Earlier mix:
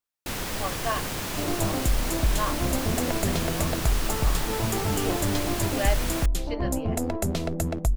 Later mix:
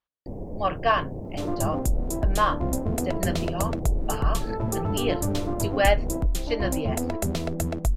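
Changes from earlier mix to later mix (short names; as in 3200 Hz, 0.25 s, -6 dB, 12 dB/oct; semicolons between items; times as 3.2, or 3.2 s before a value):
speech +7.5 dB; first sound: add inverse Chebyshev low-pass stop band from 1300 Hz, stop band 40 dB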